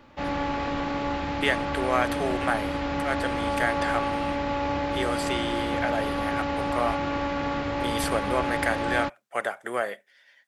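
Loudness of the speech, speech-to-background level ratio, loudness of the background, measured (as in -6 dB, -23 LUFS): -30.0 LUFS, -1.5 dB, -28.5 LUFS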